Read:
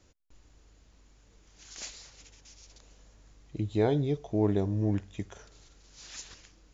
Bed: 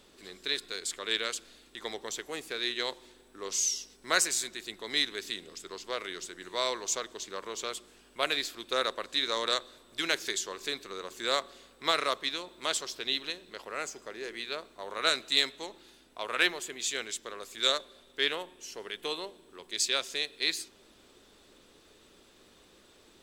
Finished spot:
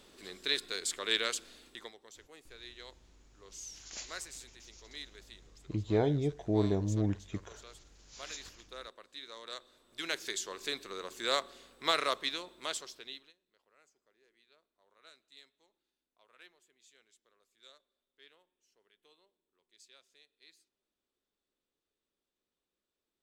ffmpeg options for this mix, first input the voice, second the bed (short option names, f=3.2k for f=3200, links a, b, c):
-filter_complex "[0:a]adelay=2150,volume=-2.5dB[a];[1:a]volume=15.5dB,afade=t=out:st=1.67:d=0.25:silence=0.133352,afade=t=in:st=9.44:d=1.31:silence=0.16788,afade=t=out:st=12.25:d=1.08:silence=0.0334965[b];[a][b]amix=inputs=2:normalize=0"